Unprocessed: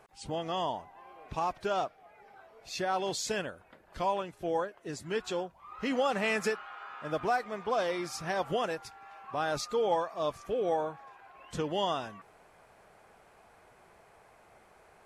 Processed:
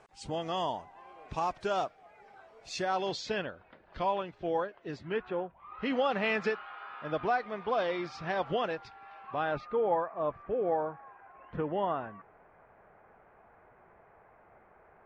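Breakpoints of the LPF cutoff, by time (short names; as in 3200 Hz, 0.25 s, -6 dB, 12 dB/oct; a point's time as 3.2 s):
LPF 24 dB/oct
2.75 s 8500 Hz
3.3 s 4300 Hz
4.95 s 4300 Hz
5.31 s 2100 Hz
5.93 s 4200 Hz
9.25 s 4200 Hz
9.82 s 2000 Hz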